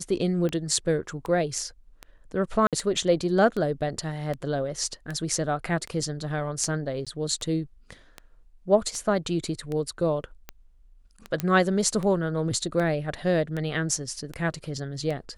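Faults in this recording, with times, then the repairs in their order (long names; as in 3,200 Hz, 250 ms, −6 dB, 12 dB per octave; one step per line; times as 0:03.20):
scratch tick 78 rpm −20 dBFS
0:02.67–0:02.73: drop-out 57 ms
0:07.05–0:07.07: drop-out 16 ms
0:11.40: click −11 dBFS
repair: click removal
repair the gap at 0:02.67, 57 ms
repair the gap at 0:07.05, 16 ms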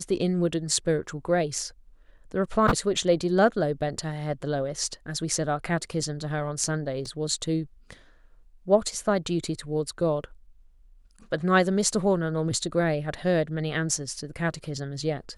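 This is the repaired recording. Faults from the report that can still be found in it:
none of them is left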